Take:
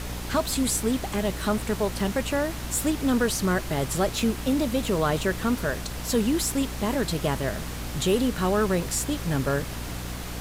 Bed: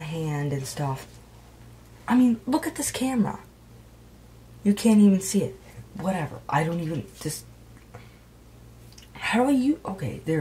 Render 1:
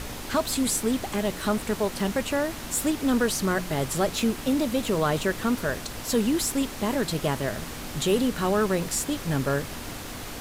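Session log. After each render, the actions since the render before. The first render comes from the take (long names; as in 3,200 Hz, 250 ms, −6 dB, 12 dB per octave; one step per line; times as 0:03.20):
hum removal 60 Hz, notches 3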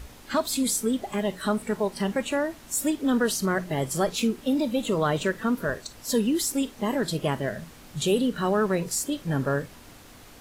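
noise reduction from a noise print 12 dB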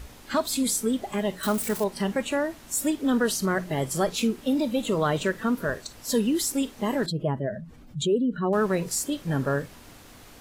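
0:01.43–0:01.84: spike at every zero crossing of −25 dBFS
0:07.06–0:08.53: expanding power law on the bin magnitudes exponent 1.8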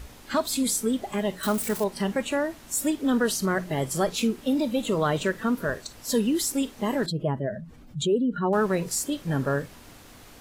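0:07.97–0:08.60: hollow resonant body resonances 870/1,400 Hz, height 12 dB → 9 dB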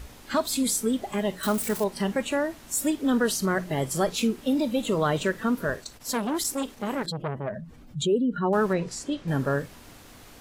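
0:05.76–0:07.55: saturating transformer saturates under 1,100 Hz
0:08.73–0:09.28: high-frequency loss of the air 97 metres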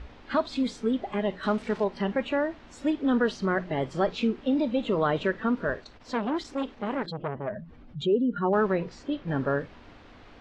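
Bessel low-pass filter 2,800 Hz, order 4
parametric band 140 Hz −4.5 dB 0.83 octaves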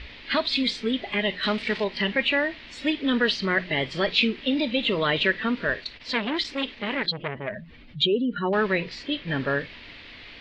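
flat-topped bell 3,000 Hz +15.5 dB
notch filter 770 Hz, Q 12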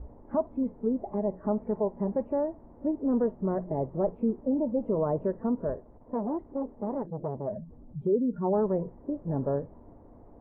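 Butterworth low-pass 900 Hz 36 dB per octave
dynamic equaliser 310 Hz, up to −3 dB, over −34 dBFS, Q 1.6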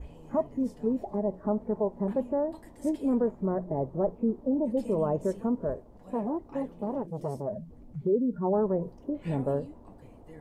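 mix in bed −24.5 dB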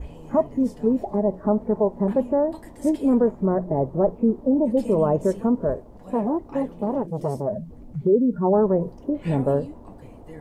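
level +7.5 dB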